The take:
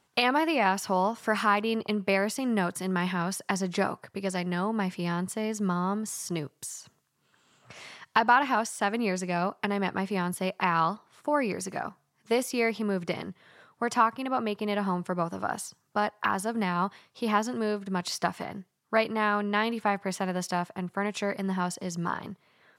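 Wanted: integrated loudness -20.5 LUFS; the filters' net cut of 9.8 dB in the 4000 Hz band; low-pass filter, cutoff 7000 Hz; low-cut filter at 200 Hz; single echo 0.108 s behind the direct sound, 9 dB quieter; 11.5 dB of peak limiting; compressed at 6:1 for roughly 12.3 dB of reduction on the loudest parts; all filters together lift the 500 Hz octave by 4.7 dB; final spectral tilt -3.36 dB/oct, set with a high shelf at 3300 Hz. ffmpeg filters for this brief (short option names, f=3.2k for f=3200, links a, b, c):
-af "highpass=200,lowpass=7k,equalizer=f=500:t=o:g=6.5,highshelf=f=3.3k:g=-8.5,equalizer=f=4k:t=o:g=-8,acompressor=threshold=-30dB:ratio=6,alimiter=level_in=1.5dB:limit=-24dB:level=0:latency=1,volume=-1.5dB,aecho=1:1:108:0.355,volume=16.5dB"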